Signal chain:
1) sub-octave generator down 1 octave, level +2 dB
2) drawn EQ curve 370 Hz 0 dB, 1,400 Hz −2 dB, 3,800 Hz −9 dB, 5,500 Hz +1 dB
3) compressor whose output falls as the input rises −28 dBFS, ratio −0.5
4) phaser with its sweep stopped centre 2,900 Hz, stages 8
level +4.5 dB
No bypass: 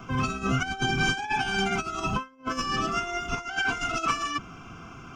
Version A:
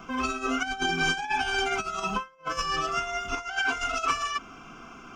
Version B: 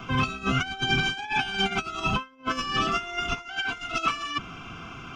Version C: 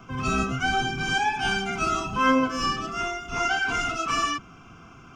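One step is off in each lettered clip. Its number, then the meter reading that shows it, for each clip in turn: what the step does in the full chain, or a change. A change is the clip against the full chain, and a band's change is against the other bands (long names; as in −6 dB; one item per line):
1, 125 Hz band −11.5 dB
2, 4 kHz band +4.0 dB
3, change in momentary loudness spread −2 LU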